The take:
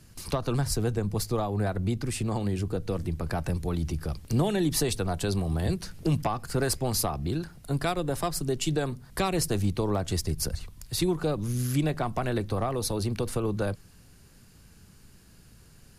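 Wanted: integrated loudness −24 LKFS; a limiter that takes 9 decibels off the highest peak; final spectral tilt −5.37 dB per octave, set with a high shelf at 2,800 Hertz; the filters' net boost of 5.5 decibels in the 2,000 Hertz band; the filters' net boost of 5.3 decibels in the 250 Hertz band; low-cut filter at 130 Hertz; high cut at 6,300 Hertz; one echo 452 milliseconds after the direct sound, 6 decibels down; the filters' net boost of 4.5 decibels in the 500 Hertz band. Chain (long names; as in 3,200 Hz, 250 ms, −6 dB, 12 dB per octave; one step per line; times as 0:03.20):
high-pass filter 130 Hz
low-pass filter 6,300 Hz
parametric band 250 Hz +7 dB
parametric band 500 Hz +3 dB
parametric band 2,000 Hz +6 dB
high-shelf EQ 2,800 Hz +3 dB
brickwall limiter −19.5 dBFS
single-tap delay 452 ms −6 dB
level +4.5 dB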